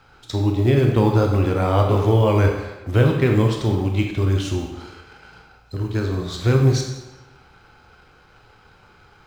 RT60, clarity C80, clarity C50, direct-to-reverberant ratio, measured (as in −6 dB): 1.1 s, 6.0 dB, 4.0 dB, 1.5 dB